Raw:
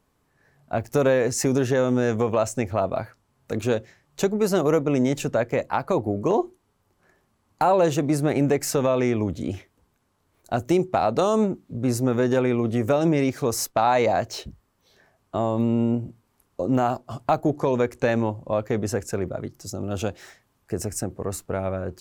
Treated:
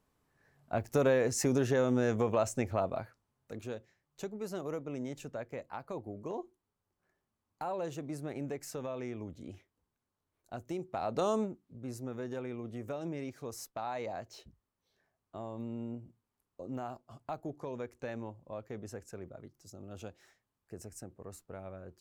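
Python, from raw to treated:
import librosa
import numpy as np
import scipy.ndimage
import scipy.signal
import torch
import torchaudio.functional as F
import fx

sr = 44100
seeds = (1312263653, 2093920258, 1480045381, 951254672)

y = fx.gain(x, sr, db=fx.line((2.73, -7.5), (3.7, -18.0), (10.82, -18.0), (11.3, -8.5), (11.59, -18.5)))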